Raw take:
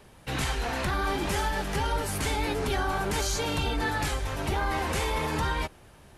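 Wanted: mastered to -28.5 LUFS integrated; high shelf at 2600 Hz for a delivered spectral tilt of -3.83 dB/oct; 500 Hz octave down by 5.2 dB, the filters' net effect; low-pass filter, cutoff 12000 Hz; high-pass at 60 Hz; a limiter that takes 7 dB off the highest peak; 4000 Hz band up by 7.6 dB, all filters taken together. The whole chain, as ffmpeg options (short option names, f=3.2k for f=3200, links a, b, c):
-af "highpass=60,lowpass=12k,equalizer=f=500:t=o:g=-7,highshelf=f=2.6k:g=5,equalizer=f=4k:t=o:g=5.5,volume=0.5dB,alimiter=limit=-19.5dB:level=0:latency=1"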